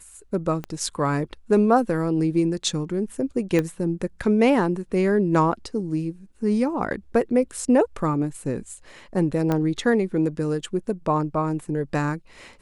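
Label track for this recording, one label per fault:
0.640000	0.640000	pop -18 dBFS
3.590000	3.590000	pop -11 dBFS
9.520000	9.520000	pop -12 dBFS

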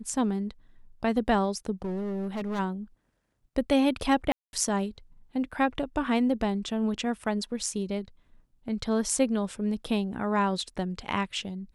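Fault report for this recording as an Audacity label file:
1.820000	2.600000	clipped -28.5 dBFS
4.320000	4.530000	dropout 211 ms

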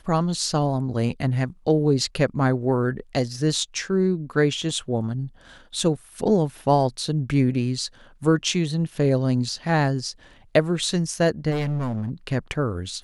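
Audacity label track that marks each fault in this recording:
11.500000	12.100000	clipped -22 dBFS

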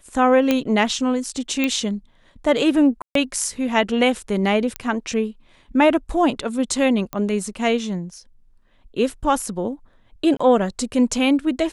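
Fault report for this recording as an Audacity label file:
0.510000	0.510000	pop -5 dBFS
1.640000	1.640000	pop -8 dBFS
3.020000	3.150000	dropout 133 ms
4.760000	4.760000	pop -9 dBFS
7.130000	7.130000	pop -13 dBFS
10.370000	10.390000	dropout 25 ms

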